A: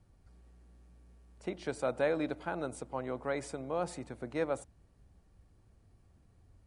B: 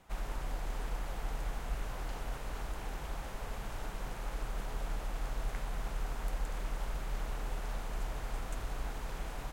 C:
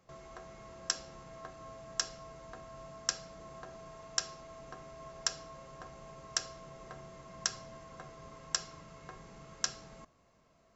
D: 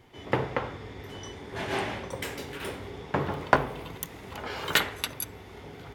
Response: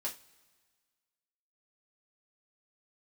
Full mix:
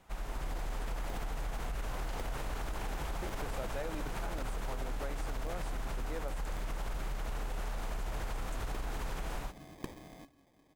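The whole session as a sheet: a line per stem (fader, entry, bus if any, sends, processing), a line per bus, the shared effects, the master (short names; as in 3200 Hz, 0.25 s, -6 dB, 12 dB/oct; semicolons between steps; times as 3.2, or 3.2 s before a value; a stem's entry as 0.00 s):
-4.0 dB, 1.75 s, no bus, no send, dry
-0.5 dB, 0.00 s, bus A, no send, AGC gain up to 11 dB
-0.5 dB, 0.20 s, muted 7.24–7.77, bus A, no send, bell 280 Hz +14 dB 0.25 oct; sample-rate reducer 1400 Hz, jitter 0%
off
bus A: 0.0 dB, limiter -24.5 dBFS, peak gain reduction 12.5 dB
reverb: off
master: compressor 4:1, threshold -34 dBFS, peak gain reduction 7.5 dB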